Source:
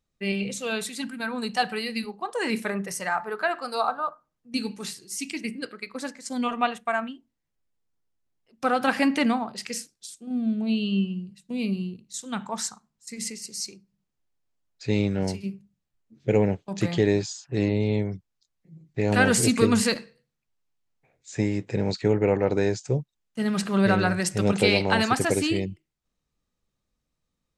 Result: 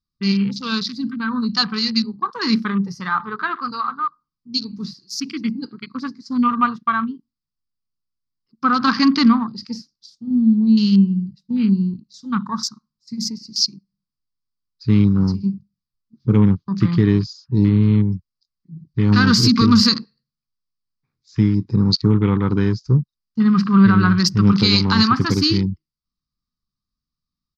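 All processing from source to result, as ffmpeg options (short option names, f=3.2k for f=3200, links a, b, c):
-filter_complex "[0:a]asettb=1/sr,asplit=3[a][b][c];[a]atrim=end=3.714[d];[b]atrim=start=3.71:end=4.73,asetpts=PTS-STARTPTS,afade=t=in:d=0.004:c=qsin,afade=t=out:st=1.016:d=0.004:c=qsin,lowpass=9.4k,acrossover=split=390|1400[e][f][g];[e]acompressor=threshold=-44dB:ratio=4[h];[f]acompressor=threshold=-37dB:ratio=4[i];[g]acompressor=threshold=-32dB:ratio=4[j];[h][i][j]amix=inputs=3:normalize=0[k];[c]atrim=start=4.726[l];[d][k]acrossfade=d=0.004:c1=hsin:c2=qsin[m];[m][l]acrossfade=d=0.004:c1=qsin:c2=hsin,afwtdn=0.0141,firequalizer=gain_entry='entry(230,0);entry(620,-29);entry(1100,3);entry(1700,-10);entry(2700,-12);entry(4800,10);entry(8300,-26);entry(13000,-17)':delay=0.05:min_phase=1,alimiter=level_in=15dB:limit=-1dB:release=50:level=0:latency=1,volume=-3.5dB"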